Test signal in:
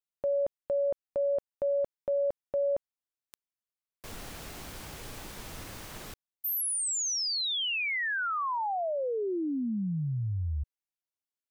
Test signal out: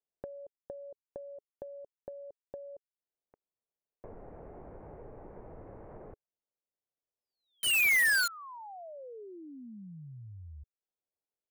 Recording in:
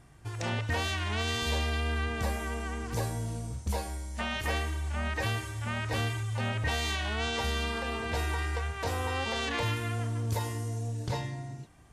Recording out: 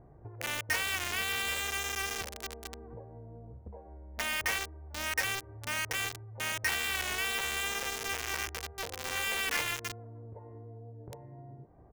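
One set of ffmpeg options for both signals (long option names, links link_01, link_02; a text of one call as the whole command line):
ffmpeg -i in.wav -filter_complex "[0:a]firequalizer=gain_entry='entry(270,0);entry(420,8);entry(1200,0);entry(2100,7);entry(6200,-28)':delay=0.05:min_phase=1,acrossover=split=1100[link_01][link_02];[link_01]acompressor=threshold=-46dB:ratio=16:attack=70:release=219:knee=6:detection=rms[link_03];[link_02]acrusher=bits=4:mix=0:aa=0.000001[link_04];[link_03][link_04]amix=inputs=2:normalize=0" out.wav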